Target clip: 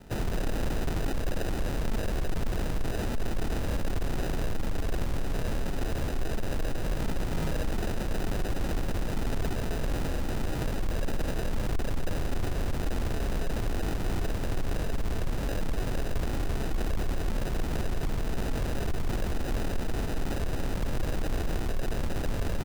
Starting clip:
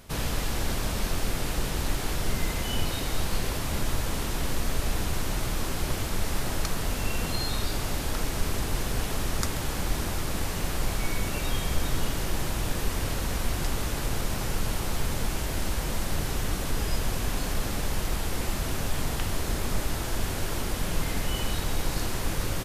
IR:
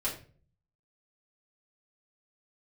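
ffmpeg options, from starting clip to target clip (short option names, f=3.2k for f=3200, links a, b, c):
-filter_complex "[0:a]bandreject=f=199:t=h:w=4,bandreject=f=398:t=h:w=4,bandreject=f=597:t=h:w=4,bandreject=f=796:t=h:w=4,bandreject=f=995:t=h:w=4,bandreject=f=1.194k:t=h:w=4,bandreject=f=1.393k:t=h:w=4,bandreject=f=1.592k:t=h:w=4,bandreject=f=1.791k:t=h:w=4,bandreject=f=1.99k:t=h:w=4,bandreject=f=2.189k:t=h:w=4,bandreject=f=2.388k:t=h:w=4,bandreject=f=2.587k:t=h:w=4,bandreject=f=2.786k:t=h:w=4,bandreject=f=2.985k:t=h:w=4,bandreject=f=3.184k:t=h:w=4,bandreject=f=3.383k:t=h:w=4,asetrate=33038,aresample=44100,atempo=1.33484,acrossover=split=110|2300[a][b][c];[b]aeval=exprs='0.0251*(abs(mod(val(0)/0.0251+3,4)-2)-1)':c=same[d];[a][d][c]amix=inputs=3:normalize=0,acrusher=samples=40:mix=1:aa=0.000001,asoftclip=type=tanh:threshold=-24.5dB,volume=3dB"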